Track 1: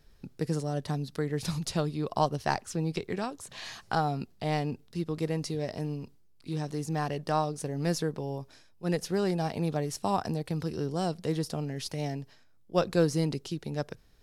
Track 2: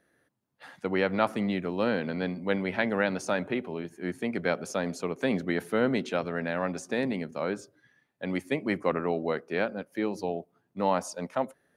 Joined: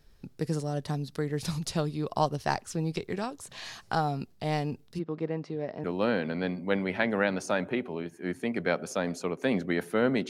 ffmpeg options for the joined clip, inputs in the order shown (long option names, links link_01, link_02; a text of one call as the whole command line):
ffmpeg -i cue0.wav -i cue1.wav -filter_complex "[0:a]asplit=3[link_01][link_02][link_03];[link_01]afade=type=out:start_time=4.98:duration=0.02[link_04];[link_02]highpass=180,lowpass=2000,afade=type=in:start_time=4.98:duration=0.02,afade=type=out:start_time=5.84:duration=0.02[link_05];[link_03]afade=type=in:start_time=5.84:duration=0.02[link_06];[link_04][link_05][link_06]amix=inputs=3:normalize=0,apad=whole_dur=10.29,atrim=end=10.29,atrim=end=5.842[link_07];[1:a]atrim=start=1.628:end=6.08[link_08];[link_07][link_08]acrossfade=duration=0.004:curve1=hsin:curve2=hsin" out.wav